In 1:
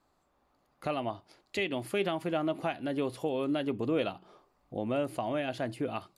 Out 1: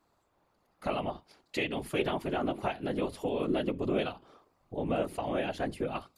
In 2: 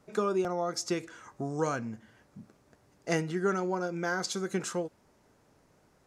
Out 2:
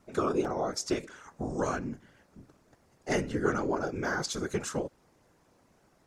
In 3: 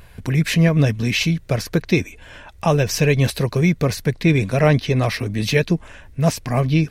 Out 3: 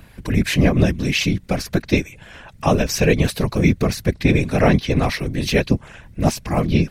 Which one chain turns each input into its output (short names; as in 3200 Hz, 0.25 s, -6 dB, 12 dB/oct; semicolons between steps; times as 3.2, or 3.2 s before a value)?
whisperiser